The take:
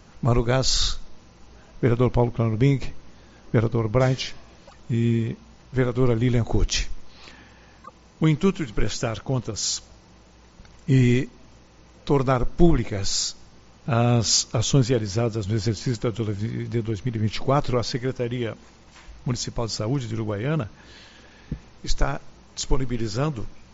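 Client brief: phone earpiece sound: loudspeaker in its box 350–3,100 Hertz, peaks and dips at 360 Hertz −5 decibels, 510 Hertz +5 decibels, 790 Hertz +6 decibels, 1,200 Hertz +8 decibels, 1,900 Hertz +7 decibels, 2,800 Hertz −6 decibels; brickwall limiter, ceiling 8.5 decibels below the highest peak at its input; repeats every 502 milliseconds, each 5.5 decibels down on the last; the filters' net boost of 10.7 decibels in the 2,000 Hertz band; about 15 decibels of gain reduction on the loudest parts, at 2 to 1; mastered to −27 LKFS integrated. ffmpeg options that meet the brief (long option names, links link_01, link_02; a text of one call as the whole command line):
ffmpeg -i in.wav -af "equalizer=frequency=2000:width_type=o:gain=8.5,acompressor=threshold=-40dB:ratio=2,alimiter=level_in=3dB:limit=-24dB:level=0:latency=1,volume=-3dB,highpass=350,equalizer=frequency=360:width_type=q:width=4:gain=-5,equalizer=frequency=510:width_type=q:width=4:gain=5,equalizer=frequency=790:width_type=q:width=4:gain=6,equalizer=frequency=1200:width_type=q:width=4:gain=8,equalizer=frequency=1900:width_type=q:width=4:gain=7,equalizer=frequency=2800:width_type=q:width=4:gain=-6,lowpass=frequency=3100:width=0.5412,lowpass=frequency=3100:width=1.3066,aecho=1:1:502|1004|1506|2008|2510|3012|3514:0.531|0.281|0.149|0.079|0.0419|0.0222|0.0118,volume=13dB" out.wav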